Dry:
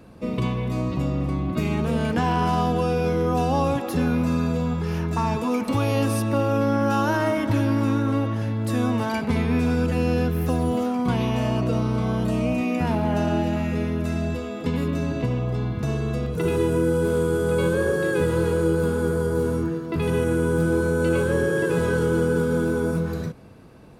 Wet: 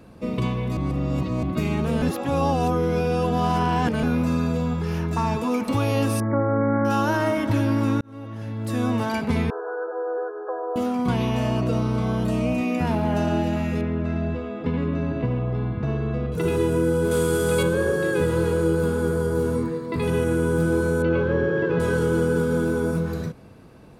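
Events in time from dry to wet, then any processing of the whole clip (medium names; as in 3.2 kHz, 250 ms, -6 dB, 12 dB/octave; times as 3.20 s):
0.77–1.43 s: reverse
2.02–4.03 s: reverse
6.20–6.85 s: brick-wall FIR low-pass 2.3 kHz
8.01–8.92 s: fade in
9.50–10.76 s: brick-wall FIR band-pass 340–1700 Hz
13.81–16.32 s: low-pass 2.4 kHz
17.11–17.63 s: treble shelf 2 kHz +10 dB
19.55–20.04 s: rippled EQ curve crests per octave 0.97, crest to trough 8 dB
21.02–21.80 s: Gaussian low-pass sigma 2.3 samples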